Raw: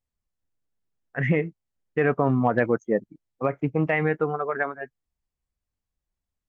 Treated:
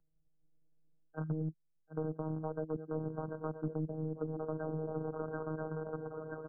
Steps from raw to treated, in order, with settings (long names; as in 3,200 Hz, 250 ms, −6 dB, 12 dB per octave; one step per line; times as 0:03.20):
adaptive Wiener filter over 41 samples
tilt shelving filter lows +3.5 dB
feedback echo with a long and a short gap by turns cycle 979 ms, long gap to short 3 to 1, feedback 49%, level −12 dB
reversed playback
downward compressor 5 to 1, threshold −32 dBFS, peak gain reduction 16 dB
reversed playback
phases set to zero 157 Hz
in parallel at −8 dB: bit reduction 5 bits
on the sum: single-tap delay 1,098 ms −18 dB
treble cut that deepens with the level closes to 320 Hz, closed at −26.5 dBFS
linear-phase brick-wall low-pass 1,600 Hz
multiband upward and downward compressor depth 40%
level −3 dB